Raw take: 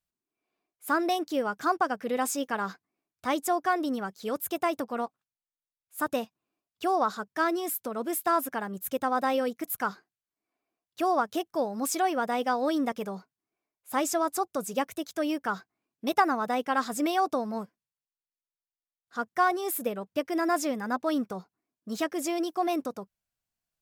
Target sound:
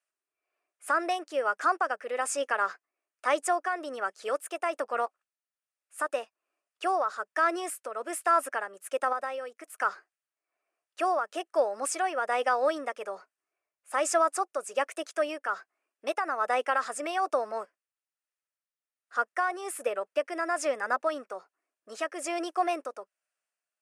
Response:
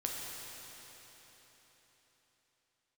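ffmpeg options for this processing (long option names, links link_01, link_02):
-filter_complex "[0:a]asettb=1/sr,asplit=3[link_01][link_02][link_03];[link_01]atrim=end=9.124[link_04];[link_02]atrim=start=9.12:end=9.77,asetpts=PTS-STARTPTS,afade=type=in:duration=0.004:curve=qsin,afade=type=out:start_time=0.646:duration=0.004:curve=qsin,acompressor=threshold=-33dB:ratio=10[link_05];[link_03]atrim=start=9.766[link_06];[link_04][link_05]acrossfade=duration=0.004:curve1=hsin:curve2=qsin[link_07];[link_07][link_06]acrossfade=duration=0.004:curve1=qsin:curve2=hsin,highpass=frequency=380:width=0.5412,highpass=frequency=380:width=1.3066,equalizer=frequency=590:width_type=q:width=4:gain=7,equalizer=frequency=1300:width_type=q:width=4:gain=8,equalizer=frequency=1800:width_type=q:width=4:gain=7,equalizer=frequency=2600:width_type=q:width=4:gain=6,equalizer=frequency=3800:width_type=q:width=4:gain=-6,equalizer=frequency=9200:width_type=q:width=4:gain=8,lowpass=frequency=9600:width=0.5412,lowpass=frequency=9600:width=1.3066,alimiter=limit=-14.5dB:level=0:latency=1:release=84,tremolo=f=1.2:d=0.44"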